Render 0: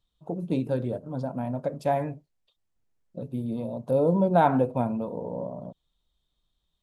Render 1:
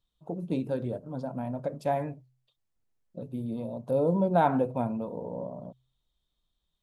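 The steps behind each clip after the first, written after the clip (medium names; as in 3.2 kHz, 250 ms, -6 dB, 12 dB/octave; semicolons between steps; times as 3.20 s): de-hum 64.06 Hz, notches 2; trim -3 dB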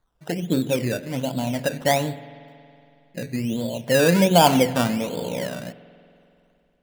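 decimation with a swept rate 16×, swing 60% 1.3 Hz; spring tank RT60 2.7 s, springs 46 ms, chirp 75 ms, DRR 15.5 dB; trim +8 dB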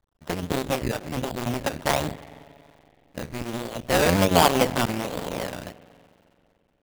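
cycle switcher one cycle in 2, muted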